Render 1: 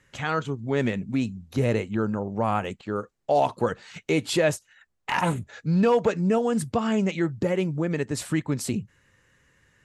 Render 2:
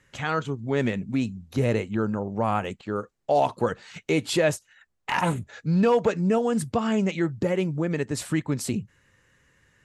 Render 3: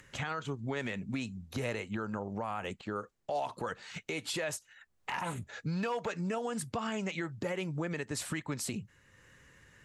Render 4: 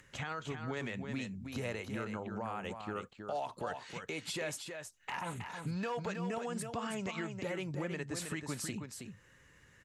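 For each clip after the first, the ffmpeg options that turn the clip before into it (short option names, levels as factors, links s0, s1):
-af anull
-filter_complex "[0:a]acrossover=split=690|1200[s0][s1][s2];[s0]acompressor=threshold=0.0251:ratio=6[s3];[s3][s1][s2]amix=inputs=3:normalize=0,alimiter=limit=0.0631:level=0:latency=1:release=111,acompressor=mode=upward:threshold=0.00282:ratio=2.5,volume=0.841"
-af "aecho=1:1:319:0.473,volume=0.668"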